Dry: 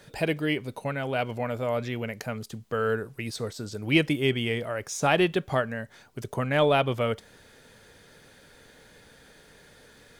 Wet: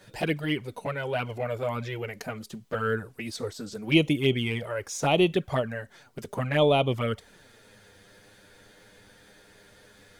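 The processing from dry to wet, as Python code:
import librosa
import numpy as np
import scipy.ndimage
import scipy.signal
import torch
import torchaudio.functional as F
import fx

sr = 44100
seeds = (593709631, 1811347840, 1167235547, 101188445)

y = fx.env_flanger(x, sr, rest_ms=11.1, full_db=-20.0)
y = y * 10.0 ** (2.0 / 20.0)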